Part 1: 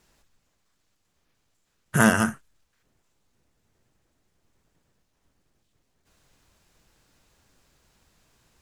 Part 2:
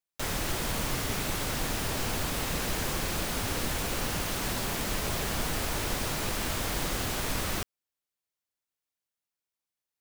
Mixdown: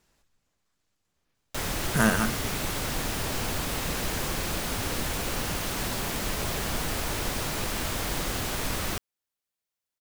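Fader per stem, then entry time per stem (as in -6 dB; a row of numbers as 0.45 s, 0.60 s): -4.5 dB, +1.0 dB; 0.00 s, 1.35 s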